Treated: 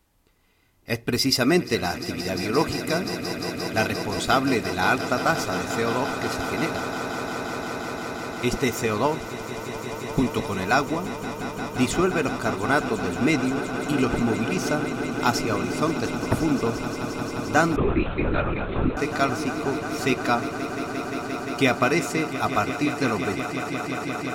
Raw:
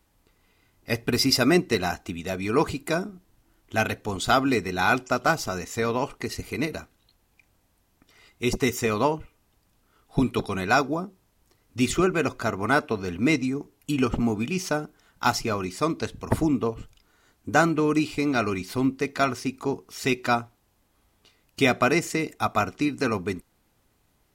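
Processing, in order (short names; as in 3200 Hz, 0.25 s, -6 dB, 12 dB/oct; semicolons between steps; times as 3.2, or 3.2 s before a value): on a send: swelling echo 0.175 s, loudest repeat 8, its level -14.5 dB; 17.76–18.97 on the sum: LPC vocoder at 8 kHz whisper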